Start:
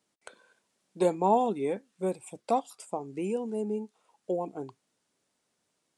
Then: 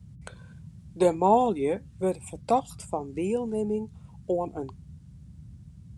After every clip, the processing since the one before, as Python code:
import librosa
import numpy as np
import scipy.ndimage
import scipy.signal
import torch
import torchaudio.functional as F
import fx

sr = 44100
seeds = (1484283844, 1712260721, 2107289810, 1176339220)

y = fx.dmg_noise_band(x, sr, seeds[0], low_hz=54.0, high_hz=180.0, level_db=-50.0)
y = y * librosa.db_to_amplitude(3.5)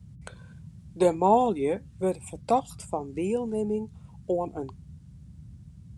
y = x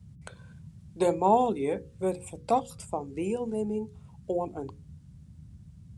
y = fx.hum_notches(x, sr, base_hz=60, count=9)
y = y * librosa.db_to_amplitude(-1.5)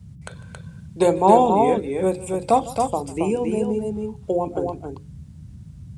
y = fx.echo_multitap(x, sr, ms=(41, 151, 274), db=(-18.0, -19.5, -4.5))
y = y * librosa.db_to_amplitude(7.5)